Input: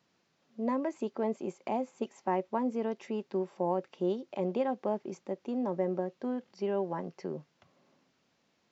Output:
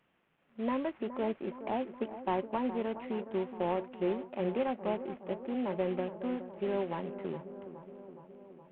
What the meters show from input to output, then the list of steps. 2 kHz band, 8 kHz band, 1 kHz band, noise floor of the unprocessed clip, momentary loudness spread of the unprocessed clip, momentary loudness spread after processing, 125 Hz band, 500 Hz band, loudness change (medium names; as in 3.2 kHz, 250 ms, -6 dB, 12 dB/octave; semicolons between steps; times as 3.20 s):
+3.0 dB, no reading, -1.0 dB, -74 dBFS, 7 LU, 15 LU, -1.0 dB, -1.0 dB, -1.0 dB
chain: CVSD coder 16 kbps; bucket-brigade echo 418 ms, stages 4096, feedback 67%, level -12 dB; trim -1 dB